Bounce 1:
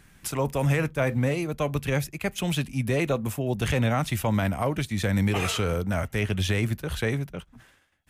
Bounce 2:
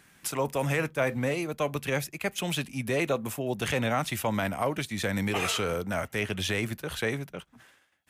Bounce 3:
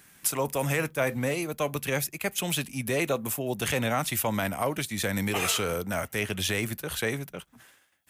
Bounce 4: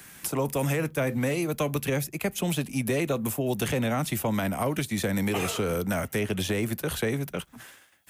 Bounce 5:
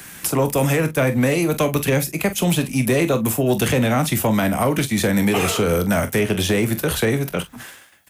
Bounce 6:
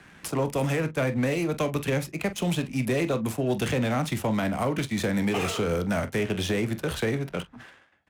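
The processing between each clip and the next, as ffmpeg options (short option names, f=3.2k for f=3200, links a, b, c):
-af "highpass=f=300:p=1"
-af "highshelf=f=8k:g=12"
-filter_complex "[0:a]acrossover=split=140|390|940[a][b][c][d];[a]acompressor=threshold=-45dB:ratio=4[e];[b]acompressor=threshold=-36dB:ratio=4[f];[c]acompressor=threshold=-43dB:ratio=4[g];[d]acompressor=threshold=-42dB:ratio=4[h];[e][f][g][h]amix=inputs=4:normalize=0,volume=8dB"
-filter_complex "[0:a]asplit=2[a][b];[b]aecho=0:1:24|45:0.224|0.224[c];[a][c]amix=inputs=2:normalize=0,asoftclip=type=tanh:threshold=-16dB,volume=9dB"
-af "adynamicsmooth=sensitivity=6:basefreq=2.1k,volume=-7.5dB"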